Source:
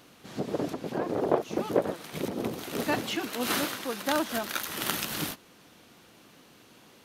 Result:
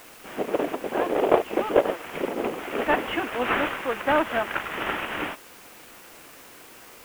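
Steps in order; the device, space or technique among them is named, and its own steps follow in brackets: army field radio (band-pass 380–3300 Hz; CVSD coder 16 kbps; white noise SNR 23 dB); trim +8.5 dB

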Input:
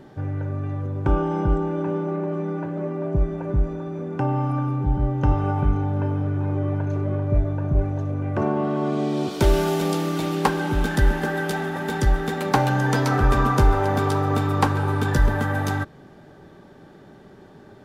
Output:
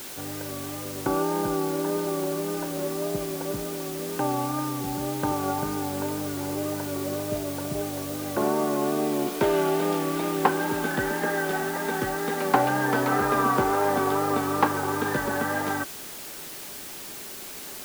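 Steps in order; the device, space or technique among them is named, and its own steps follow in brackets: wax cylinder (band-pass 260–2600 Hz; wow and flutter; white noise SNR 12 dB)

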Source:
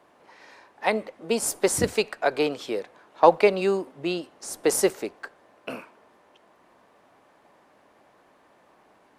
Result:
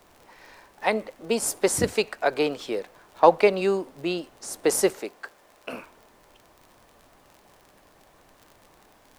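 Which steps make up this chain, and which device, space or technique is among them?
vinyl LP (crackle 47 per s -39 dBFS; pink noise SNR 34 dB); 4.99–5.73 s: bass shelf 210 Hz -10.5 dB

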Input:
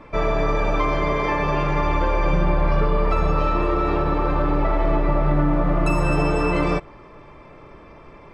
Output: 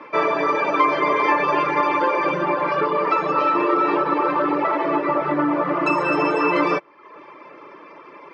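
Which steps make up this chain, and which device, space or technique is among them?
high-pass 250 Hz 24 dB/octave; car door speaker (cabinet simulation 100–6600 Hz, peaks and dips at 120 Hz +4 dB, 230 Hz -9 dB, 440 Hz -3 dB, 710 Hz -8 dB, 1 kHz +3 dB, 3.7 kHz -5 dB); reverb removal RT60 0.67 s; low-pass 5.1 kHz 12 dB/octave; trim +7 dB

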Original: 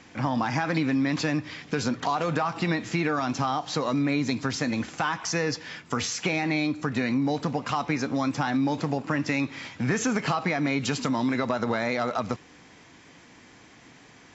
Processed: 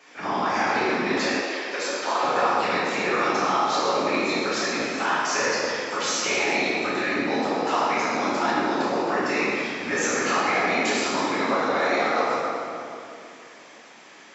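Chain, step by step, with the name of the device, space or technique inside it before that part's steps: whispering ghost (whisper effect; high-pass 430 Hz 12 dB/octave; reverberation RT60 2.7 s, pre-delay 6 ms, DRR -9 dB); 1.41–2.23 s: high-pass 400 Hz 12 dB/octave; trim -3 dB

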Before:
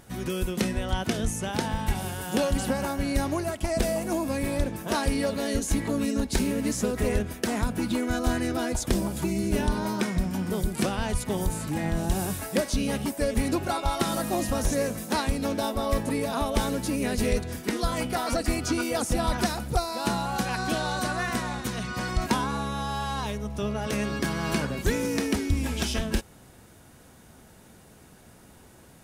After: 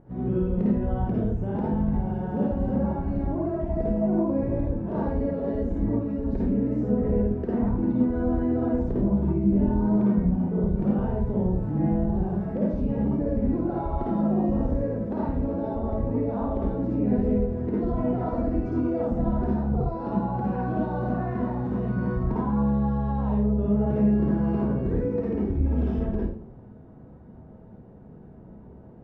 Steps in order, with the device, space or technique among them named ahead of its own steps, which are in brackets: television next door (compression, threshold -26 dBFS, peak gain reduction 7.5 dB; low-pass 580 Hz 12 dB/octave; reverberation RT60 0.60 s, pre-delay 49 ms, DRR -5.5 dB)

